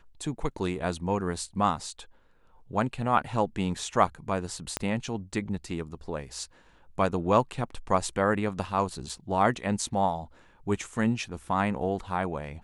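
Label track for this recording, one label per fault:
4.770000	4.770000	pop -12 dBFS
9.090000	9.090000	dropout 4.7 ms

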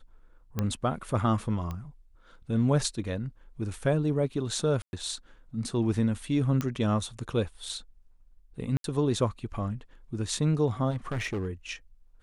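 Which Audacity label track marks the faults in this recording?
0.590000	0.590000	pop -15 dBFS
1.710000	1.710000	pop -23 dBFS
4.820000	4.930000	dropout 111 ms
6.610000	6.610000	pop -16 dBFS
8.770000	8.840000	dropout 72 ms
10.900000	11.480000	clipped -27 dBFS

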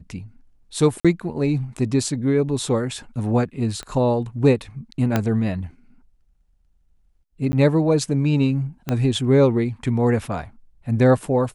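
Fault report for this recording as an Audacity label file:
1.000000	1.050000	dropout 46 ms
3.830000	3.830000	pop -19 dBFS
5.160000	5.160000	pop -6 dBFS
7.520000	7.530000	dropout 10 ms
8.890000	8.890000	pop -11 dBFS

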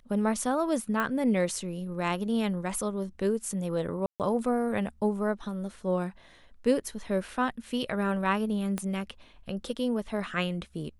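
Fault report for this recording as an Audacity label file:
1.000000	1.000000	pop -17 dBFS
4.060000	4.200000	dropout 138 ms
8.780000	8.780000	pop -18 dBFS

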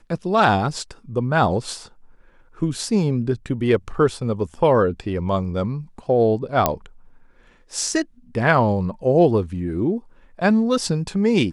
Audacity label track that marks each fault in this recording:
6.660000	6.660000	pop -2 dBFS

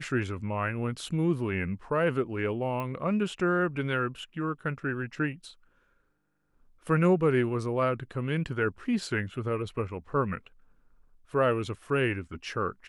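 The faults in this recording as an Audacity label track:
2.800000	2.800000	pop -22 dBFS

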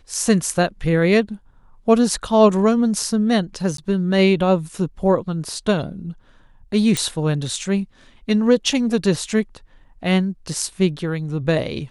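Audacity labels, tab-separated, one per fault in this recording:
3.770000	3.780000	dropout 13 ms
6.970000	6.970000	pop

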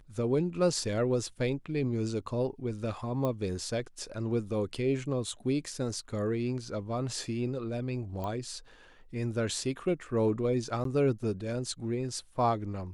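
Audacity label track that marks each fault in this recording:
3.250000	3.250000	pop -20 dBFS
8.240000	8.240000	pop -24 dBFS
10.840000	10.850000	dropout 13 ms

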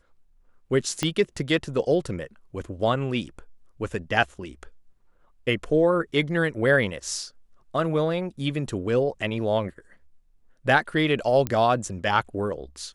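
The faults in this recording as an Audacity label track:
1.030000	1.030000	pop -10 dBFS
11.470000	11.470000	pop -12 dBFS

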